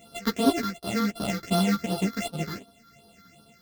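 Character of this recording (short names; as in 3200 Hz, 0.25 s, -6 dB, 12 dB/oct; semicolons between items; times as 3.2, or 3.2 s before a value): a buzz of ramps at a fixed pitch in blocks of 64 samples; phasing stages 6, 2.7 Hz, lowest notch 690–2100 Hz; random-step tremolo; a shimmering, thickened sound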